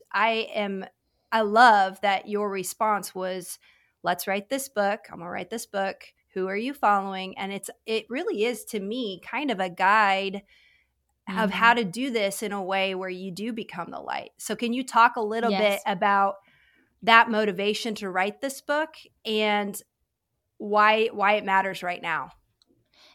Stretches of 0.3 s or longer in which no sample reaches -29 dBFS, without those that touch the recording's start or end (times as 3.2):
0.84–1.32
3.53–4.05
5.92–6.36
10.38–11.29
16.31–17.07
18.85–19.26
19.79–20.62